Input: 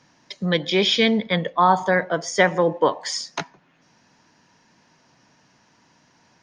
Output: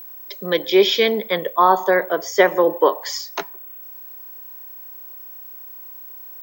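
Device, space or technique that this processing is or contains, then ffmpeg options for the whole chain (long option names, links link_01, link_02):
old television with a line whistle: -af "highpass=frequency=230:width=0.5412,highpass=frequency=230:width=1.3066,equalizer=frequency=250:width_type=q:width=4:gain=-7,equalizer=frequency=390:width_type=q:width=4:gain=9,equalizer=frequency=570:width_type=q:width=4:gain=3,equalizer=frequency=1100:width_type=q:width=4:gain=4,lowpass=frequency=7700:width=0.5412,lowpass=frequency=7700:width=1.3066,aeval=exprs='val(0)+0.0178*sin(2*PI*15734*n/s)':channel_layout=same"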